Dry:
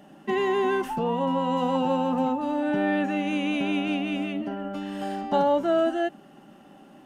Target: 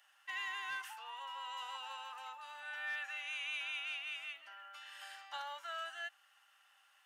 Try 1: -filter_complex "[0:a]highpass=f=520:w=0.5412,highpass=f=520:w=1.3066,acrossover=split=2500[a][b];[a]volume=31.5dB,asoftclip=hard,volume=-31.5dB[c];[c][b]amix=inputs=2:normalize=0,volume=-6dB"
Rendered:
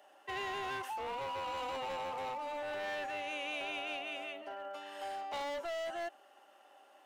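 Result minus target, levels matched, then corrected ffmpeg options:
500 Hz band +16.0 dB
-filter_complex "[0:a]highpass=f=1.3k:w=0.5412,highpass=f=1.3k:w=1.3066,acrossover=split=2500[a][b];[a]volume=31.5dB,asoftclip=hard,volume=-31.5dB[c];[c][b]amix=inputs=2:normalize=0,volume=-6dB"

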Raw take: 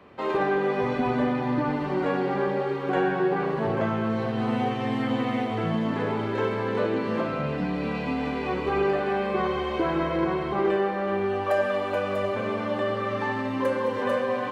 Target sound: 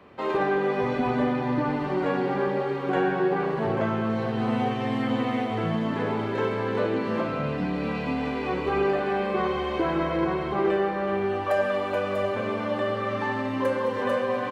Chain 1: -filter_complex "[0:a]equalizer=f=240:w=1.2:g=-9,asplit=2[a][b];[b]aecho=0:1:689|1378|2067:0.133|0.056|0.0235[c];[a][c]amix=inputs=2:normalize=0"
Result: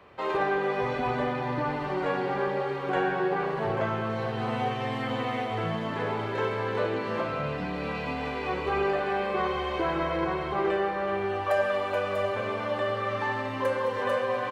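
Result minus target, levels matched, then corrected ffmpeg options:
250 Hz band -4.5 dB
-filter_complex "[0:a]asplit=2[a][b];[b]aecho=0:1:689|1378|2067:0.133|0.056|0.0235[c];[a][c]amix=inputs=2:normalize=0"

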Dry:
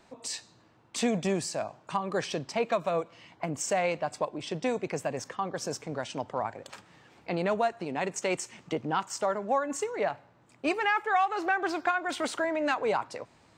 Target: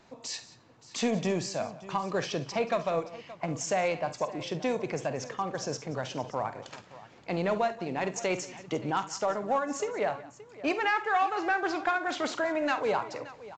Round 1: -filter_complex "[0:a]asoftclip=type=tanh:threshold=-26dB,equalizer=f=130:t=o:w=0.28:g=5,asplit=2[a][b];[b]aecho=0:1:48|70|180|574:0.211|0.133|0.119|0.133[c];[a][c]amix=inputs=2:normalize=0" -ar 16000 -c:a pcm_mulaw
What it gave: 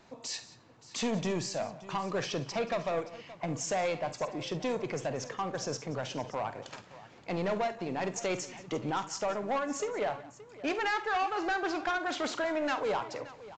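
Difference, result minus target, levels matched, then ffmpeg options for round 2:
soft clip: distortion +14 dB
-filter_complex "[0:a]asoftclip=type=tanh:threshold=-16dB,equalizer=f=130:t=o:w=0.28:g=5,asplit=2[a][b];[b]aecho=0:1:48|70|180|574:0.211|0.133|0.119|0.133[c];[a][c]amix=inputs=2:normalize=0" -ar 16000 -c:a pcm_mulaw

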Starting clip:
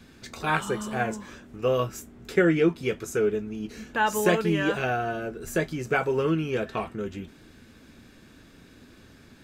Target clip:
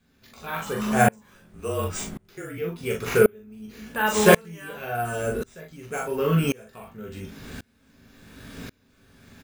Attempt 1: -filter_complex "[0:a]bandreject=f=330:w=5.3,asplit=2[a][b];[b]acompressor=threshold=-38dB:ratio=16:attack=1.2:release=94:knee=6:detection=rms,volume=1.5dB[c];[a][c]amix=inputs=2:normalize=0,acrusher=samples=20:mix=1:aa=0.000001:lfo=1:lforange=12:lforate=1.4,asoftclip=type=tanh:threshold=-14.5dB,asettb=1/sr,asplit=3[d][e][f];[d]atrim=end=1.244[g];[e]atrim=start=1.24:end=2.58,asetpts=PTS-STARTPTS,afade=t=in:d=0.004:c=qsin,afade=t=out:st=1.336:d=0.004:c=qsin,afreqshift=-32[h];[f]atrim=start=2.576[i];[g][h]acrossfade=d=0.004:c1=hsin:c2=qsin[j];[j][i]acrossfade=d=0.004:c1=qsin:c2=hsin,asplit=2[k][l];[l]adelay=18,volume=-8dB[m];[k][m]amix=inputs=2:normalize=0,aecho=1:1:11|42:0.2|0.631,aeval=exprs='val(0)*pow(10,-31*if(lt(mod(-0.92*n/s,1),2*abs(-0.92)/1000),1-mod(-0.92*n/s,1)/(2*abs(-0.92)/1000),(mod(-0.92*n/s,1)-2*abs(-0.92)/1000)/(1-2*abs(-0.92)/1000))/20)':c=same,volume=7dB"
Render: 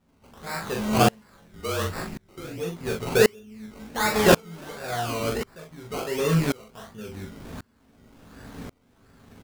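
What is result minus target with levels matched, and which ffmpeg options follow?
soft clip: distortion +15 dB; decimation with a swept rate: distortion +13 dB
-filter_complex "[0:a]bandreject=f=330:w=5.3,asplit=2[a][b];[b]acompressor=threshold=-38dB:ratio=16:attack=1.2:release=94:knee=6:detection=rms,volume=1.5dB[c];[a][c]amix=inputs=2:normalize=0,acrusher=samples=4:mix=1:aa=0.000001:lfo=1:lforange=2.4:lforate=1.4,asoftclip=type=tanh:threshold=-5.5dB,asettb=1/sr,asplit=3[d][e][f];[d]atrim=end=1.244[g];[e]atrim=start=1.24:end=2.58,asetpts=PTS-STARTPTS,afade=t=in:d=0.004:c=qsin,afade=t=out:st=1.336:d=0.004:c=qsin,afreqshift=-32[h];[f]atrim=start=2.576[i];[g][h]acrossfade=d=0.004:c1=hsin:c2=qsin[j];[j][i]acrossfade=d=0.004:c1=qsin:c2=hsin,asplit=2[k][l];[l]adelay=18,volume=-8dB[m];[k][m]amix=inputs=2:normalize=0,aecho=1:1:11|42:0.2|0.631,aeval=exprs='val(0)*pow(10,-31*if(lt(mod(-0.92*n/s,1),2*abs(-0.92)/1000),1-mod(-0.92*n/s,1)/(2*abs(-0.92)/1000),(mod(-0.92*n/s,1)-2*abs(-0.92)/1000)/(1-2*abs(-0.92)/1000))/20)':c=same,volume=7dB"

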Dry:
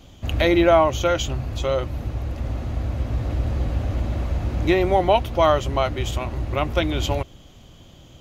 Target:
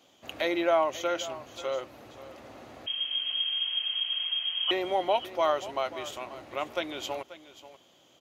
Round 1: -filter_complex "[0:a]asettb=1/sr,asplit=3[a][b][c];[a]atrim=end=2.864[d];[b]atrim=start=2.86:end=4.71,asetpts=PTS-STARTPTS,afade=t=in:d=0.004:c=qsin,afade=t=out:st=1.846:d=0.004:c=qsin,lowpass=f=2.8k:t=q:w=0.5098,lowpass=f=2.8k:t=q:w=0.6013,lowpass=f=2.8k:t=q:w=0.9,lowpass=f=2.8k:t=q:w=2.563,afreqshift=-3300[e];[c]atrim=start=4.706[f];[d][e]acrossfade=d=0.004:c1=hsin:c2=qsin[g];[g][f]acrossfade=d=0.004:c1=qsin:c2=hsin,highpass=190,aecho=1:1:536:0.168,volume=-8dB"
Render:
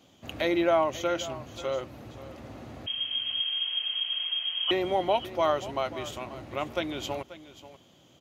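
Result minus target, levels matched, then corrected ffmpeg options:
250 Hz band +3.5 dB
-filter_complex "[0:a]asettb=1/sr,asplit=3[a][b][c];[a]atrim=end=2.864[d];[b]atrim=start=2.86:end=4.71,asetpts=PTS-STARTPTS,afade=t=in:d=0.004:c=qsin,afade=t=out:st=1.846:d=0.004:c=qsin,lowpass=f=2.8k:t=q:w=0.5098,lowpass=f=2.8k:t=q:w=0.6013,lowpass=f=2.8k:t=q:w=0.9,lowpass=f=2.8k:t=q:w=2.563,afreqshift=-3300[e];[c]atrim=start=4.706[f];[d][e]acrossfade=d=0.004:c1=hsin:c2=qsin[g];[g][f]acrossfade=d=0.004:c1=qsin:c2=hsin,highpass=390,aecho=1:1:536:0.168,volume=-8dB"

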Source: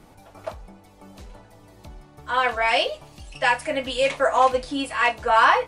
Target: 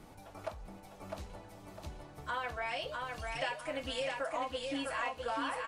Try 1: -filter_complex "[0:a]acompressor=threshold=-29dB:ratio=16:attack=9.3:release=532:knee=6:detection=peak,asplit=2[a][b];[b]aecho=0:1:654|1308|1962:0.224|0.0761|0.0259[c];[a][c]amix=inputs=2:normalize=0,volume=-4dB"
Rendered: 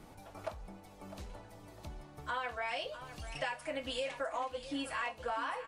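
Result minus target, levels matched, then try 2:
echo-to-direct -9.5 dB
-filter_complex "[0:a]acompressor=threshold=-29dB:ratio=16:attack=9.3:release=532:knee=6:detection=peak,asplit=2[a][b];[b]aecho=0:1:654|1308|1962|2616:0.668|0.227|0.0773|0.0263[c];[a][c]amix=inputs=2:normalize=0,volume=-4dB"

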